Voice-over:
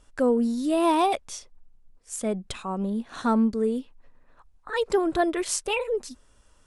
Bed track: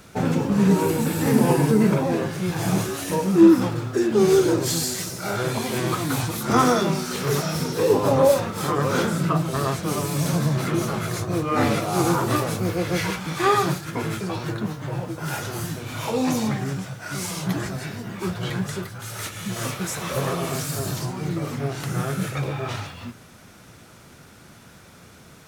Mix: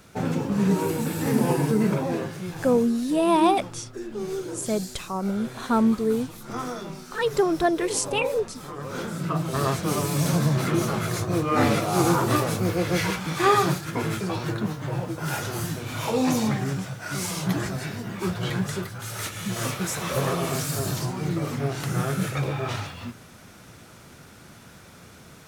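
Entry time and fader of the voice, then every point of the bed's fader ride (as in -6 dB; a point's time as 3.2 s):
2.45 s, +1.5 dB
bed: 2.17 s -4 dB
2.91 s -14 dB
8.73 s -14 dB
9.64 s 0 dB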